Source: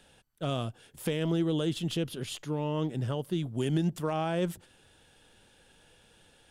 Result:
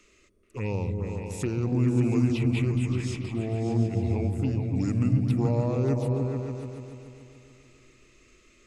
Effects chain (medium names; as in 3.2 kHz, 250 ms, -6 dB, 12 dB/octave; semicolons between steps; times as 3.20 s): touch-sensitive phaser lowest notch 170 Hz, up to 5 kHz, full sweep at -24.5 dBFS; delay with an opening low-pass 108 ms, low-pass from 200 Hz, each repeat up 2 oct, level 0 dB; tape speed -25%; trim +2 dB